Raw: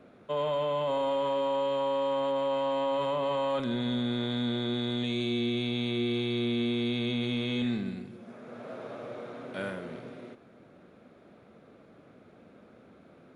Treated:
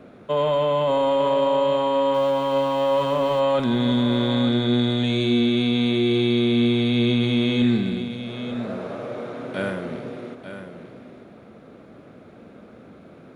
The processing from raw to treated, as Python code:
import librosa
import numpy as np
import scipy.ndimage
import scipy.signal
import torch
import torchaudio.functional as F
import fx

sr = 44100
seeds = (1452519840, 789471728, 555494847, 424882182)

y = fx.law_mismatch(x, sr, coded='A', at=(2.13, 3.39), fade=0.02)
y = fx.low_shelf(y, sr, hz=450.0, db=3.0)
y = y + 10.0 ** (-10.5 / 20.0) * np.pad(y, (int(895 * sr / 1000.0), 0))[:len(y)]
y = F.gain(torch.from_numpy(y), 7.5).numpy()